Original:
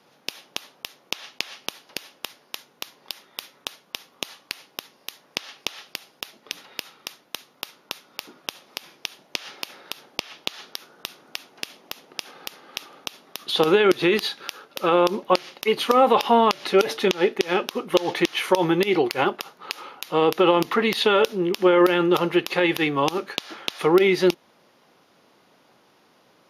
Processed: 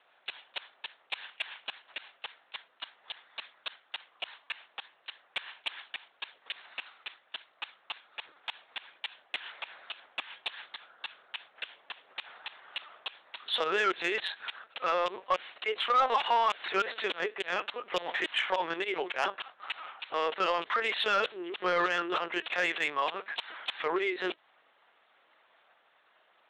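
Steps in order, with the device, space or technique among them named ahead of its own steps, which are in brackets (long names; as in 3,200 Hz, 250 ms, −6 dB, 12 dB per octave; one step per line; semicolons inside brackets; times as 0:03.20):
talking toy (linear-prediction vocoder at 8 kHz pitch kept; high-pass filter 690 Hz 12 dB per octave; parametric band 1,700 Hz +5 dB 0.49 octaves; soft clipping −14 dBFS, distortion −17 dB)
level −4 dB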